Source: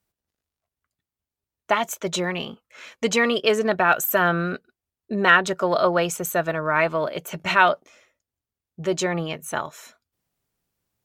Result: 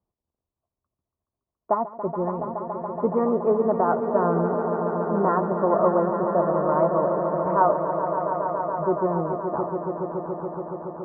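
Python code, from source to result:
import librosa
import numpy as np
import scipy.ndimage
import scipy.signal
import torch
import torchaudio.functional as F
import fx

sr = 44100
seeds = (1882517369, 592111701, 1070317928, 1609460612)

y = scipy.signal.sosfilt(scipy.signal.ellip(4, 1.0, 70, 1100.0, 'lowpass', fs=sr, output='sos'), x)
y = fx.echo_swell(y, sr, ms=141, loudest=5, wet_db=-10.0)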